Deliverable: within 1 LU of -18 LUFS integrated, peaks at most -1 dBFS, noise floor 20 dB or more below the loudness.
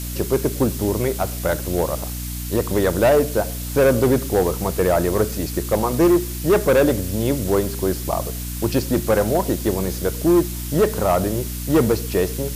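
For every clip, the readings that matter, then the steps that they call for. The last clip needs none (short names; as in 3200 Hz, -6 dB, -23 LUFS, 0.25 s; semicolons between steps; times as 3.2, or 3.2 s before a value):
hum 60 Hz; harmonics up to 300 Hz; hum level -27 dBFS; noise floor -28 dBFS; noise floor target -40 dBFS; loudness -20.0 LUFS; peak -8.0 dBFS; loudness target -18.0 LUFS
-> de-hum 60 Hz, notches 5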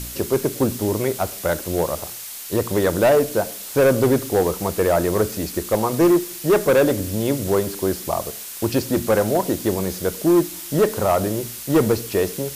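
hum none; noise floor -34 dBFS; noise floor target -41 dBFS
-> denoiser 7 dB, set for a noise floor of -34 dBFS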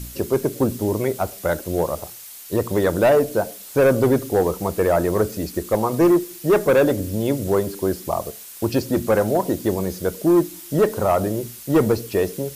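noise floor -39 dBFS; noise floor target -41 dBFS
-> denoiser 6 dB, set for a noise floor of -39 dBFS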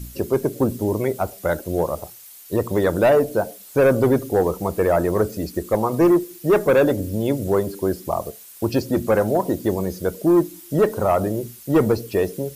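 noise floor -43 dBFS; loudness -21.0 LUFS; peak -8.5 dBFS; loudness target -18.0 LUFS
-> gain +3 dB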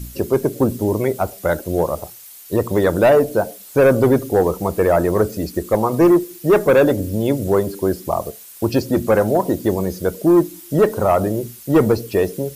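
loudness -18.0 LUFS; peak -5.5 dBFS; noise floor -40 dBFS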